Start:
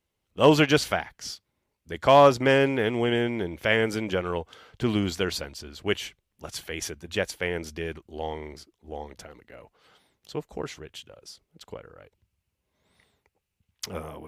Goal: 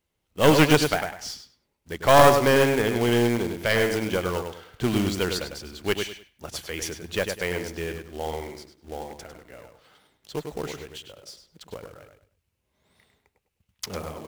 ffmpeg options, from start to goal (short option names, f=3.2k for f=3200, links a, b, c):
-filter_complex "[0:a]asplit=2[a][b];[b]adelay=101,lowpass=f=3.6k:p=1,volume=-6dB,asplit=2[c][d];[d]adelay=101,lowpass=f=3.6k:p=1,volume=0.27,asplit=2[e][f];[f]adelay=101,lowpass=f=3.6k:p=1,volume=0.27[g];[a][c][e][g]amix=inputs=4:normalize=0,aeval=exprs='0.668*(cos(1*acos(clip(val(0)/0.668,-1,1)))-cos(1*PI/2))+0.299*(cos(2*acos(clip(val(0)/0.668,-1,1)))-cos(2*PI/2))':c=same,acrusher=bits=3:mode=log:mix=0:aa=0.000001,volume=1dB"